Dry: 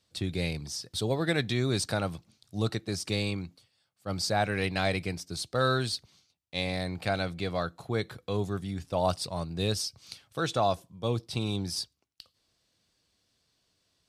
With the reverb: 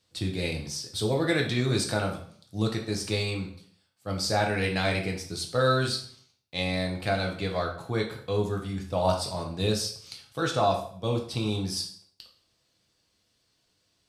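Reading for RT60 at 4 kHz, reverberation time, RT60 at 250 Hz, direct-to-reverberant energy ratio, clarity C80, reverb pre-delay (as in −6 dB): 0.50 s, 0.55 s, 0.60 s, 0.5 dB, 12.0 dB, 5 ms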